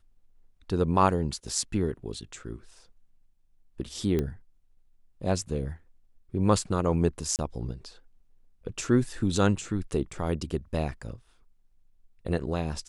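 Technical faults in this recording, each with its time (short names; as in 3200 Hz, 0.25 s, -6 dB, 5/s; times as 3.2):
4.19 pop -16 dBFS
7.36–7.39 gap 28 ms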